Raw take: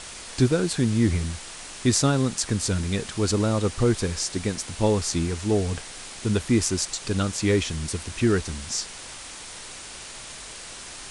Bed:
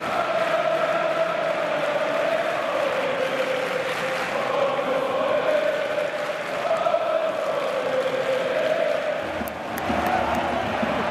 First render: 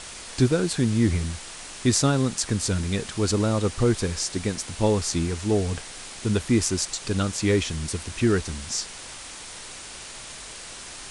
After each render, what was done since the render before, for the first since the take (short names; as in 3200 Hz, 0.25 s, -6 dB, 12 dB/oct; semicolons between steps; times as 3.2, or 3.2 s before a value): nothing audible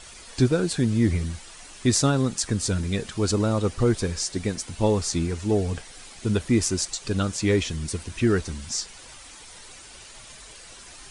denoiser 9 dB, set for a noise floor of -40 dBFS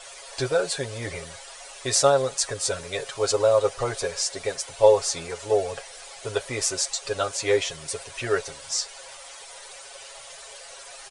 resonant low shelf 370 Hz -13.5 dB, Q 3; comb 7.3 ms, depth 73%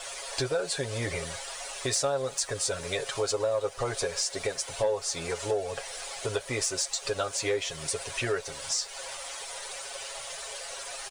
compressor 3:1, threshold -32 dBFS, peak gain reduction 16 dB; sample leveller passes 1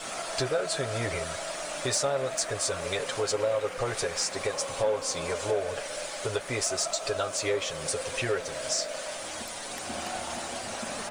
add bed -14 dB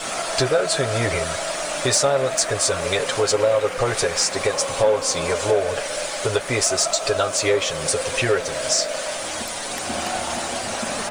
gain +9 dB